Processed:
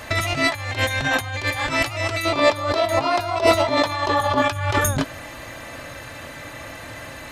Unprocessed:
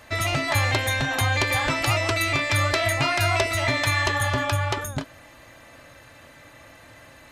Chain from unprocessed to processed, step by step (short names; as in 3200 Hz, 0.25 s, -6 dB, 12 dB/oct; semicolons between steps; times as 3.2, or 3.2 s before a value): negative-ratio compressor -28 dBFS, ratio -0.5; 2.25–4.42 ten-band EQ 125 Hz -4 dB, 250 Hz +7 dB, 500 Hz +8 dB, 1000 Hz +10 dB, 2000 Hz -7 dB, 4000 Hz +5 dB, 8000 Hz -4 dB; gain +6 dB